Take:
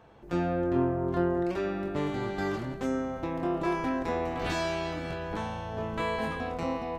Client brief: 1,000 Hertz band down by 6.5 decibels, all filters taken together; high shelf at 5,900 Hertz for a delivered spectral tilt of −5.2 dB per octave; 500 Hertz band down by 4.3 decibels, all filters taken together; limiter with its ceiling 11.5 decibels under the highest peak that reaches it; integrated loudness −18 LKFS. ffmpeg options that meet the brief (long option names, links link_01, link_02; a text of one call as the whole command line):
ffmpeg -i in.wav -af "equalizer=frequency=500:width_type=o:gain=-4.5,equalizer=frequency=1000:width_type=o:gain=-7,highshelf=frequency=5900:gain=7,volume=19.5dB,alimiter=limit=-9dB:level=0:latency=1" out.wav